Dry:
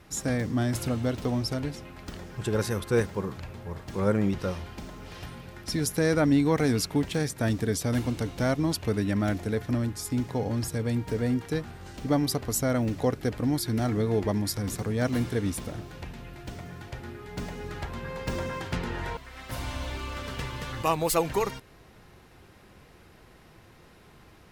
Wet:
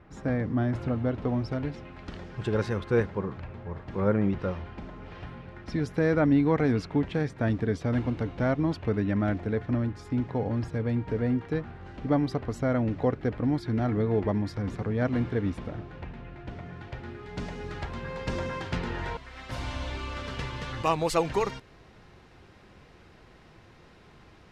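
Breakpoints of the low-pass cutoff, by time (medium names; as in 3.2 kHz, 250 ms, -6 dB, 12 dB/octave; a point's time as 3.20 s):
1.16 s 1.8 kHz
2.25 s 4.1 kHz
3.21 s 2.3 kHz
16.46 s 2.3 kHz
17.51 s 5.8 kHz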